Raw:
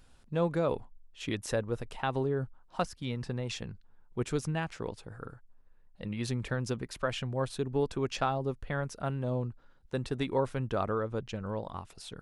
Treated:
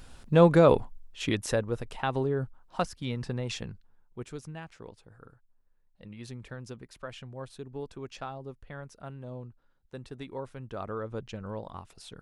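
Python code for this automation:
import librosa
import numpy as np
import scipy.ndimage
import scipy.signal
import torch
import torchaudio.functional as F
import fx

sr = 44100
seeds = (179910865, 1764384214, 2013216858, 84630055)

y = fx.gain(x, sr, db=fx.line((0.75, 10.5), (1.71, 2.0), (3.65, 2.0), (4.32, -9.0), (10.61, -9.0), (11.1, -2.0)))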